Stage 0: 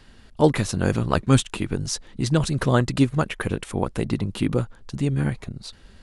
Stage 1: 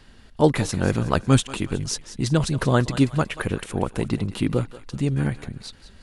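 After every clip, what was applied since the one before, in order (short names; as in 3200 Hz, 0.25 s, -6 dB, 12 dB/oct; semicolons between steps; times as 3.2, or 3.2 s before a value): thinning echo 0.184 s, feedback 47%, high-pass 610 Hz, level -13.5 dB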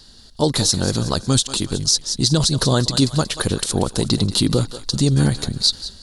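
AGC gain up to 11.5 dB; resonant high shelf 3200 Hz +10 dB, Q 3; limiter -5.5 dBFS, peak gain reduction 8 dB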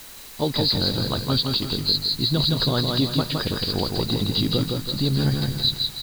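nonlinear frequency compression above 3800 Hz 4:1; feedback echo 0.164 s, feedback 38%, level -3.5 dB; requantised 6-bit, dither triangular; gain -6 dB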